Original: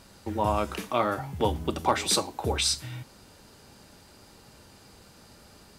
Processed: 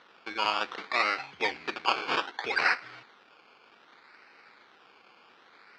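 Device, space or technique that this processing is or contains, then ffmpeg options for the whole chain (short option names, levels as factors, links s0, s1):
circuit-bent sampling toy: -filter_complex "[0:a]asettb=1/sr,asplit=3[s0][s1][s2];[s0]atrim=end=2.004[s3];[s1]atrim=start=2:end=2.7,asetpts=PTS-STARTPTS,afade=t=in:d=0.004:c=qsin,afade=t=out:st=0.696:d=0.004:c=qsin,equalizer=f=1600:t=o:w=0.36:g=14.5[s4];[s2]atrim=start=2.696[s5];[s3][s4]acrossfade=d=0.004:c1=hsin:c2=qsin[s6];[s6][s5]acrossfade=d=0.004:c1=qsin:c2=hsin,acrusher=samples=18:mix=1:aa=0.000001:lfo=1:lforange=10.8:lforate=0.64,highpass=560,equalizer=f=600:t=q:w=4:g=-8,equalizer=f=890:t=q:w=4:g=-3,equalizer=f=1400:t=q:w=4:g=4,equalizer=f=2300:t=q:w=4:g=8,equalizer=f=4500:t=q:w=4:g=4,lowpass=f=4600:w=0.5412,lowpass=f=4600:w=1.3066"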